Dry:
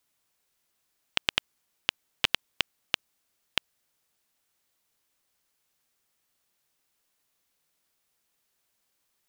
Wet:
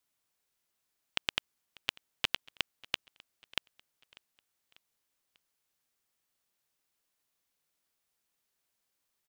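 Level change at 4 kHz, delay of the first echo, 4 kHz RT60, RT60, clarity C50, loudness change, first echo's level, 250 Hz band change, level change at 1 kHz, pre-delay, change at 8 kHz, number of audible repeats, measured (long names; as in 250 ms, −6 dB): −6.0 dB, 594 ms, no reverb audible, no reverb audible, no reverb audible, −6.0 dB, −24.0 dB, −6.0 dB, −6.0 dB, no reverb audible, −6.0 dB, 2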